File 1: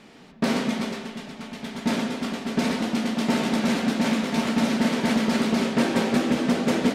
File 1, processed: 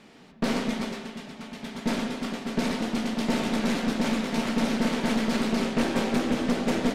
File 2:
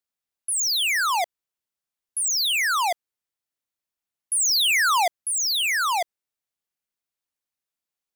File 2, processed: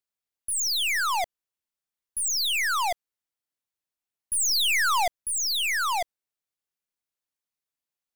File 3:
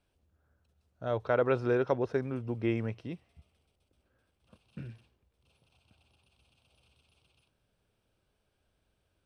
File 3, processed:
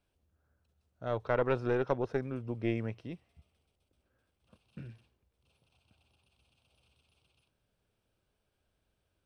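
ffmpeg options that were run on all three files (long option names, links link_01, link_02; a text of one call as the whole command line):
ffmpeg -i in.wav -af "aeval=exprs='(tanh(6.31*val(0)+0.6)-tanh(0.6))/6.31':channel_layout=same" out.wav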